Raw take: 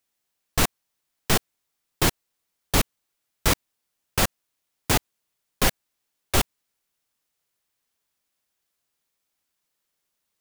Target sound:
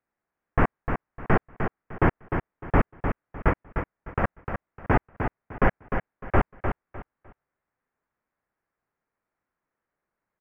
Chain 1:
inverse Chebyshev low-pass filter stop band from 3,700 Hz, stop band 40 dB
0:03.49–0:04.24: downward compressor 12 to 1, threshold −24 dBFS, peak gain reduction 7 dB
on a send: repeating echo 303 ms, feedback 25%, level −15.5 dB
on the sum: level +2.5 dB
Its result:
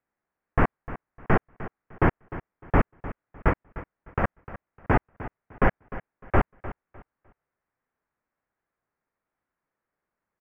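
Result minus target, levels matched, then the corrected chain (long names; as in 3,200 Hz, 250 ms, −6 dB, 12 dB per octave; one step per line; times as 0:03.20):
echo-to-direct −8.5 dB
inverse Chebyshev low-pass filter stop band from 3,700 Hz, stop band 40 dB
0:03.49–0:04.24: downward compressor 12 to 1, threshold −24 dBFS, peak gain reduction 7 dB
on a send: repeating echo 303 ms, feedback 25%, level −7 dB
on the sum: level +2.5 dB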